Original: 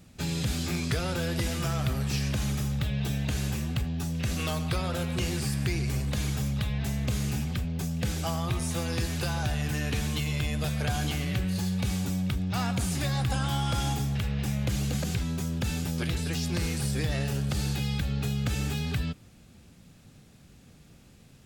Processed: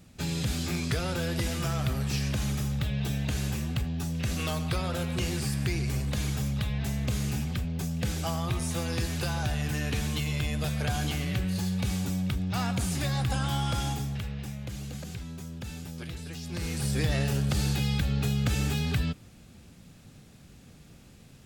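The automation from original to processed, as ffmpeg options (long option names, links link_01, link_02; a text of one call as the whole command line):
ffmpeg -i in.wav -af "volume=10.5dB,afade=type=out:start_time=13.64:duration=0.93:silence=0.375837,afade=type=in:start_time=16.44:duration=0.6:silence=0.281838" out.wav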